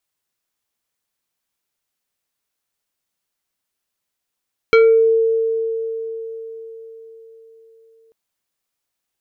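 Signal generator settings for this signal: FM tone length 3.39 s, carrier 451 Hz, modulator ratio 4.06, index 0.94, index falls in 0.41 s exponential, decay 4.58 s, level -6.5 dB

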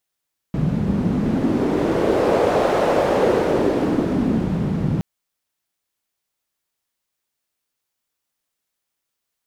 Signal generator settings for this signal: wind-like swept noise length 4.47 s, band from 170 Hz, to 550 Hz, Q 2.2, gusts 1, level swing 4 dB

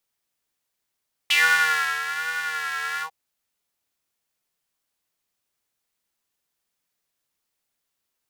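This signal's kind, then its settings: synth patch with vibrato D#3, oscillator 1 square, interval +19 st, detune 15 cents, oscillator 2 level -10.5 dB, sub -15 dB, filter highpass, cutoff 770 Hz, Q 6.2, filter envelope 2 oct, filter decay 0.14 s, filter sustain 50%, attack 7.4 ms, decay 0.70 s, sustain -11.5 dB, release 0.09 s, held 1.71 s, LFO 1.2 Hz, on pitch 64 cents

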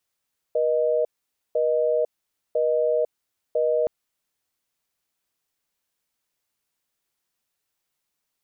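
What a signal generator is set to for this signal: call progress tone busy tone, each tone -21.5 dBFS 3.32 s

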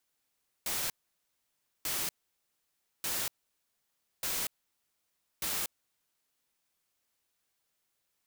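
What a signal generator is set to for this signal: noise bursts white, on 0.24 s, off 0.95 s, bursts 5, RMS -33.5 dBFS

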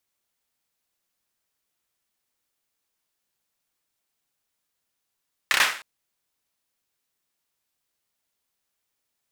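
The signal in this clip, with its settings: hand clap length 0.31 s, bursts 4, apart 30 ms, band 1.7 kHz, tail 0.44 s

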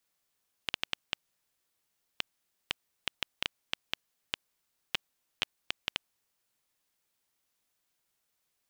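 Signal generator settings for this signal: random clicks 3.8 per s -10.5 dBFS 5.44 s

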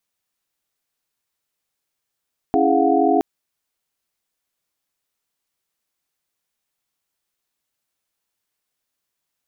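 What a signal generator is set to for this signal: chord C#4/E4/G#4/F5/F#5 sine, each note -20 dBFS 0.67 s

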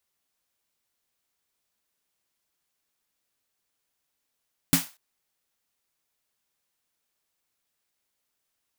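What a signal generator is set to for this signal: snare drum length 0.24 s, tones 170 Hz, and 270 Hz, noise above 620 Hz, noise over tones -1 dB, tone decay 0.16 s, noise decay 0.30 s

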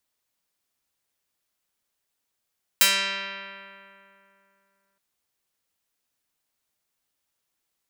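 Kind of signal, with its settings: plucked string G3, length 2.17 s, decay 2.92 s, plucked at 0.47, medium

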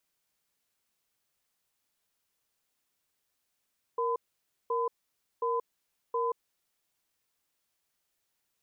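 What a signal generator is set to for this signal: cadence 468 Hz, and 1.01 kHz, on 0.18 s, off 0.54 s, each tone -29.5 dBFS 2.39 s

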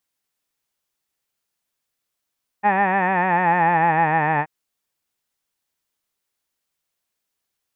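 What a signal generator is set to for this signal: formant vowel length 1.83 s, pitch 200 Hz, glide -5 st, vibrato 6.7 Hz, vibrato depth 0.75 st, F1 840 Hz, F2 1.8 kHz, F3 2.5 kHz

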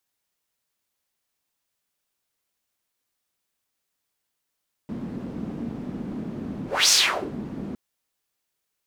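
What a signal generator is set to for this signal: whoosh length 2.86 s, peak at 2.01 s, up 0.25 s, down 0.44 s, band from 230 Hz, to 5.9 kHz, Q 2.9, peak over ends 16 dB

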